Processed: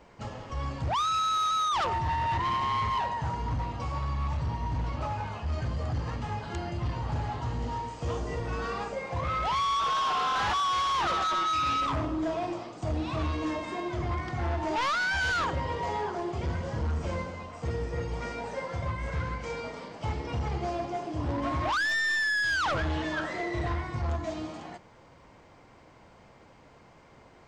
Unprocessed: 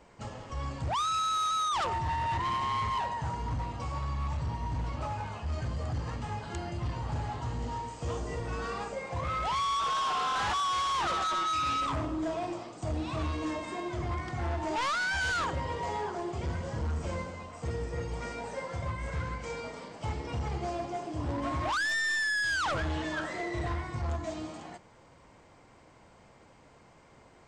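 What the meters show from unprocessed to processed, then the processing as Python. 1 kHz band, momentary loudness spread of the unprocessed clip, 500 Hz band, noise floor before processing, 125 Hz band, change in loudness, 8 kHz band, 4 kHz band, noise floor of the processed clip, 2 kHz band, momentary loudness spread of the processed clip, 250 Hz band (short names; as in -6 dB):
+2.5 dB, 9 LU, +2.5 dB, -58 dBFS, +2.5 dB, +2.5 dB, -1.5 dB, +2.0 dB, -55 dBFS, +2.5 dB, 9 LU, +2.5 dB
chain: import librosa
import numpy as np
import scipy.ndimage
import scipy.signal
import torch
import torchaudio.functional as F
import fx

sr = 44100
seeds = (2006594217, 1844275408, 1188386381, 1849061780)

y = fx.peak_eq(x, sr, hz=8400.0, db=-8.5, octaves=0.6)
y = y * librosa.db_to_amplitude(2.5)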